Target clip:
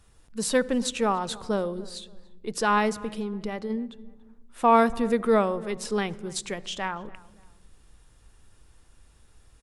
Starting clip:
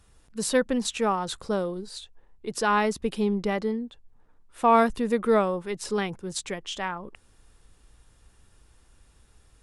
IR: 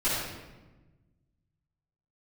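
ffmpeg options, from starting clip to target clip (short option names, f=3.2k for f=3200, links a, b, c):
-filter_complex "[0:a]asplit=3[a][b][c];[a]afade=t=out:st=2.94:d=0.02[d];[b]acompressor=threshold=-30dB:ratio=4,afade=t=in:st=2.94:d=0.02,afade=t=out:st=3.69:d=0.02[e];[c]afade=t=in:st=3.69:d=0.02[f];[d][e][f]amix=inputs=3:normalize=0,asplit=2[g][h];[h]adelay=286,lowpass=f=2.2k:p=1,volume=-21dB,asplit=2[i][j];[j]adelay=286,lowpass=f=2.2k:p=1,volume=0.33[k];[g][i][k]amix=inputs=3:normalize=0,asplit=2[l][m];[1:a]atrim=start_sample=2205,lowshelf=f=330:g=9.5[n];[m][n]afir=irnorm=-1:irlink=0,volume=-32dB[o];[l][o]amix=inputs=2:normalize=0"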